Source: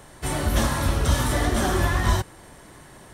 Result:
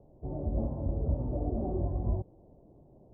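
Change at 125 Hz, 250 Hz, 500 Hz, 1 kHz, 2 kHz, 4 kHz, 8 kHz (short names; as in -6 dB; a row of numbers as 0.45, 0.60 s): -8.5 dB, -8.5 dB, -9.0 dB, -18.5 dB, under -40 dB, under -40 dB, under -40 dB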